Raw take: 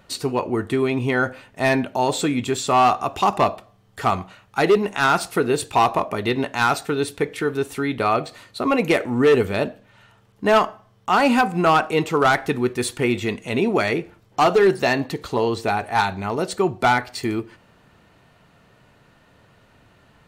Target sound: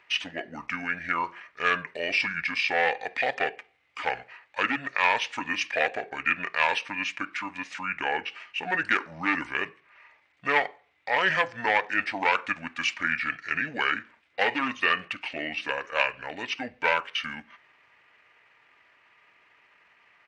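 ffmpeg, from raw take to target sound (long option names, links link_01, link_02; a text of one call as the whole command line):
ffmpeg -i in.wav -af "bandpass=frequency=3400:width_type=q:width=2.5:csg=0,asetrate=29433,aresample=44100,atempo=1.49831,volume=8dB" out.wav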